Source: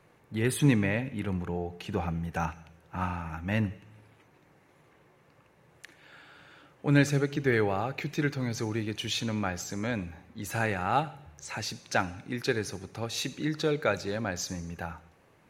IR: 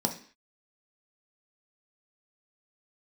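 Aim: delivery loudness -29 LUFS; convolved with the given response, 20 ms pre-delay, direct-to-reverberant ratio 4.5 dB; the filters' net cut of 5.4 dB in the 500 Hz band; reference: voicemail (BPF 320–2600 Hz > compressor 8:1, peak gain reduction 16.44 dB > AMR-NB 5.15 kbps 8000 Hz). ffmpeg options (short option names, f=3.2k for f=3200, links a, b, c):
-filter_complex "[0:a]equalizer=f=500:t=o:g=-5.5,asplit=2[a][b];[1:a]atrim=start_sample=2205,adelay=20[c];[b][c]afir=irnorm=-1:irlink=0,volume=-11.5dB[d];[a][d]amix=inputs=2:normalize=0,highpass=320,lowpass=2.6k,acompressor=threshold=-38dB:ratio=8,volume=16dB" -ar 8000 -c:a libopencore_amrnb -b:a 5150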